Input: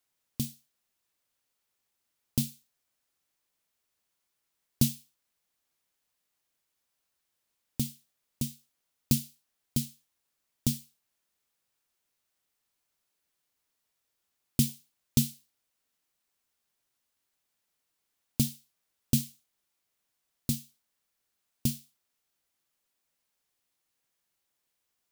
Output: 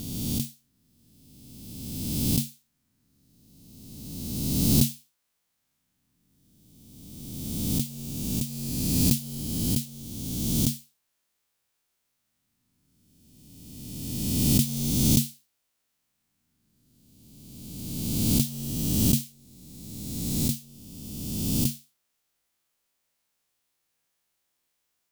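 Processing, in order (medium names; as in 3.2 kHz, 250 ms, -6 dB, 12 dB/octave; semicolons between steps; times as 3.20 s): reverse spectral sustain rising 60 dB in 2.04 s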